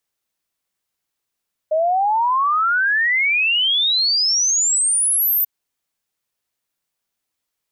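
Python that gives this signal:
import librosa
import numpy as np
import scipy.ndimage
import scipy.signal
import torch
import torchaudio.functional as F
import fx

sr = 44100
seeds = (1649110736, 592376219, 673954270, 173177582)

y = fx.ess(sr, length_s=3.74, from_hz=610.0, to_hz=14000.0, level_db=-14.5)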